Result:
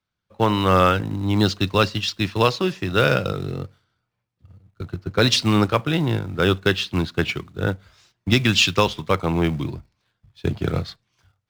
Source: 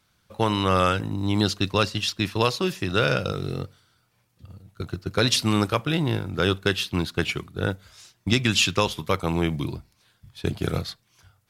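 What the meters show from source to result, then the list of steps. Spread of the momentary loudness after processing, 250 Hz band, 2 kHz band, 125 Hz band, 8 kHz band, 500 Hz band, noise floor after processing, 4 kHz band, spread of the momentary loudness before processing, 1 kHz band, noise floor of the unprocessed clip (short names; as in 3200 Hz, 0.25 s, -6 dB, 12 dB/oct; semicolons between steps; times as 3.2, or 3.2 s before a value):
14 LU, +3.5 dB, +3.5 dB, +3.5 dB, -0.5 dB, +4.0 dB, -79 dBFS, +2.5 dB, 12 LU, +4.0 dB, -67 dBFS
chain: air absorption 91 m; in parallel at -11 dB: companded quantiser 4-bit; on the sum: three-band expander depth 40%; gain +1.5 dB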